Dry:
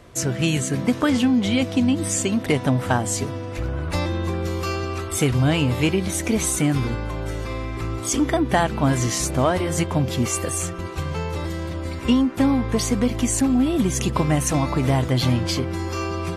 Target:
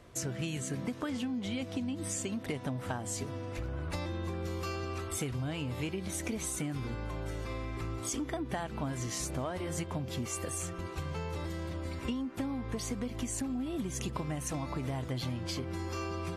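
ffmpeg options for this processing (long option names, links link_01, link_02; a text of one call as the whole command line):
ffmpeg -i in.wav -af "acompressor=threshold=-24dB:ratio=6,volume=-8.5dB" out.wav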